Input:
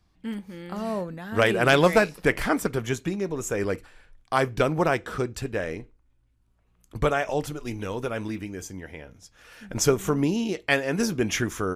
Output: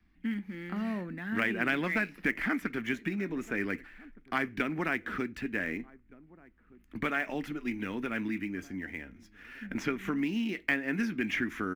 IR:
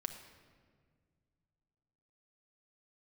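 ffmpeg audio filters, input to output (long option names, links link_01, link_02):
-filter_complex "[0:a]equalizer=frequency=125:width_type=o:width=1:gain=-11,equalizer=frequency=250:width_type=o:width=1:gain=10,equalizer=frequency=500:width_type=o:width=1:gain=-12,equalizer=frequency=1000:width_type=o:width=1:gain=-7,equalizer=frequency=2000:width_type=o:width=1:gain=11,equalizer=frequency=4000:width_type=o:width=1:gain=-3,equalizer=frequency=8000:width_type=o:width=1:gain=-10,asplit=2[link_01][link_02];[link_02]adelay=1516,volume=-28dB,highshelf=frequency=4000:gain=-34.1[link_03];[link_01][link_03]amix=inputs=2:normalize=0,acrossover=split=2300[link_04][link_05];[link_05]acrusher=bits=2:mode=log:mix=0:aa=0.000001[link_06];[link_04][link_06]amix=inputs=2:normalize=0,acrossover=split=140|1300|4100[link_07][link_08][link_09][link_10];[link_07]acompressor=threshold=-53dB:ratio=4[link_11];[link_08]acompressor=threshold=-31dB:ratio=4[link_12];[link_09]acompressor=threshold=-28dB:ratio=4[link_13];[link_10]acompressor=threshold=-46dB:ratio=4[link_14];[link_11][link_12][link_13][link_14]amix=inputs=4:normalize=0,highshelf=frequency=3100:gain=-10"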